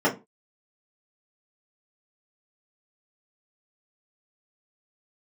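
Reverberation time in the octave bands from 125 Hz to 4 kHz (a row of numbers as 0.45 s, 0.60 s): 0.30 s, 0.30 s, 0.25 s, 0.25 s, 0.20 s, 0.15 s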